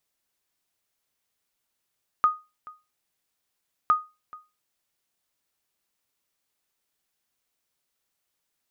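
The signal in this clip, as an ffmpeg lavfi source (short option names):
-f lavfi -i "aevalsrc='0.251*(sin(2*PI*1240*mod(t,1.66))*exp(-6.91*mod(t,1.66)/0.26)+0.075*sin(2*PI*1240*max(mod(t,1.66)-0.43,0))*exp(-6.91*max(mod(t,1.66)-0.43,0)/0.26))':d=3.32:s=44100"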